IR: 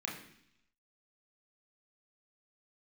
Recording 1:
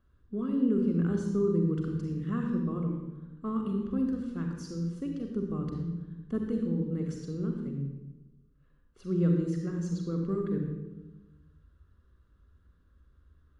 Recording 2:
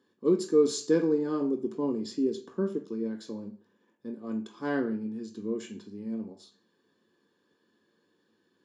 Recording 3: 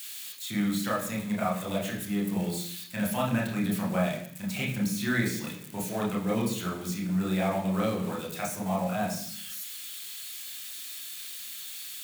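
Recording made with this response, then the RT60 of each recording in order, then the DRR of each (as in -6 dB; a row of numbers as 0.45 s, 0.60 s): 3; 1.1 s, 0.45 s, 0.70 s; 2.0 dB, 4.0 dB, -3.0 dB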